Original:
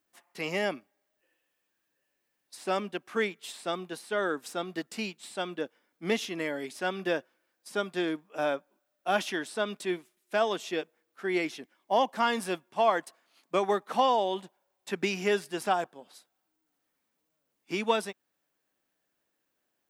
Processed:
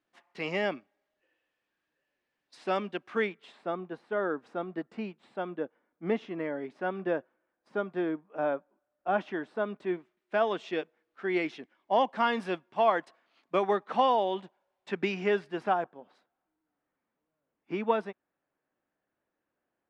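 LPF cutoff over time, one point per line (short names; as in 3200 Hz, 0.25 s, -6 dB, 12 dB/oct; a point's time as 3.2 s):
3.1 s 3600 Hz
3.65 s 1400 Hz
9.73 s 1400 Hz
10.72 s 3100 Hz
14.9 s 3100 Hz
15.95 s 1700 Hz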